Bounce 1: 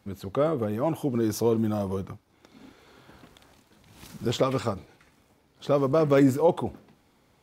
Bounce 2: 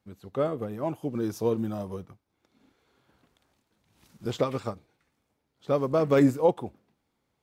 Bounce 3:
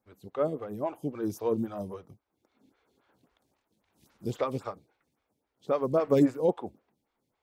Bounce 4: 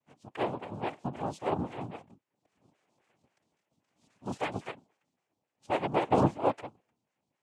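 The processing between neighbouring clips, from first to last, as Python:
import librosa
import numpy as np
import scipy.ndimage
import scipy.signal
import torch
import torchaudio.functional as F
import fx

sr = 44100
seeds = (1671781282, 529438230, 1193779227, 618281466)

y1 = fx.upward_expand(x, sr, threshold_db=-44.0, expansion=1.5)
y2 = fx.stagger_phaser(y1, sr, hz=3.7)
y3 = fx.noise_vocoder(y2, sr, seeds[0], bands=4)
y3 = y3 * 10.0 ** (-2.5 / 20.0)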